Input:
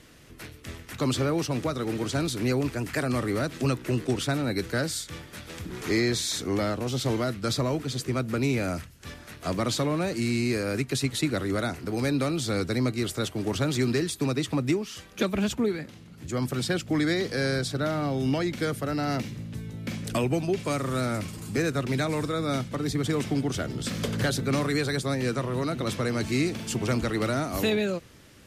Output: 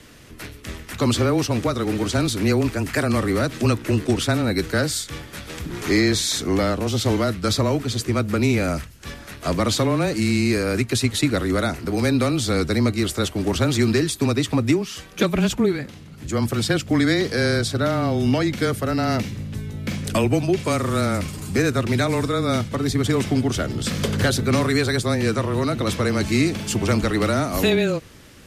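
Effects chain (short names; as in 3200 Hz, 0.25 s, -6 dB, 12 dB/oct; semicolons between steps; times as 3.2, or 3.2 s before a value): frequency shift -16 Hz; gain +6.5 dB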